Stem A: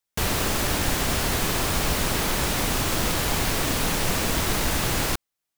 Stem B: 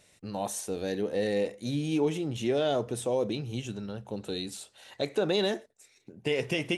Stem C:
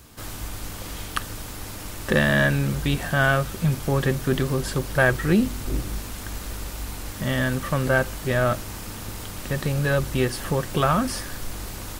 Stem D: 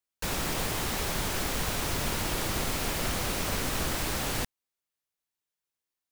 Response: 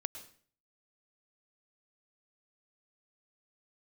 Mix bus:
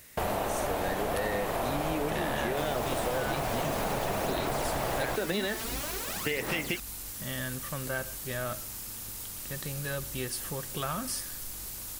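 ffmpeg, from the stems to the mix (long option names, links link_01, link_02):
-filter_complex "[0:a]lowpass=3100,equalizer=frequency=670:width_type=o:width=1.3:gain=14.5,volume=-7dB[link_01];[1:a]equalizer=frequency=1800:width_type=o:width=0.84:gain=11.5,acrusher=bits=11:mix=0:aa=0.000001,volume=-0.5dB[link_02];[2:a]crystalizer=i=3.5:c=0,volume=-16.5dB,asplit=2[link_03][link_04];[link_04]volume=-7.5dB[link_05];[3:a]highpass=200,aphaser=in_gain=1:out_gain=1:delay=4.7:decay=0.74:speed=0.48:type=sinusoidal,adelay=2350,volume=-8dB[link_06];[4:a]atrim=start_sample=2205[link_07];[link_05][link_07]afir=irnorm=-1:irlink=0[link_08];[link_01][link_02][link_03][link_06][link_08]amix=inputs=5:normalize=0,acompressor=threshold=-27dB:ratio=6"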